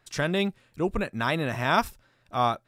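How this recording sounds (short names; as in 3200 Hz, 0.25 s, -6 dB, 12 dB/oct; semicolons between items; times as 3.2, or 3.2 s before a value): noise floor -67 dBFS; spectral tilt -4.0 dB/oct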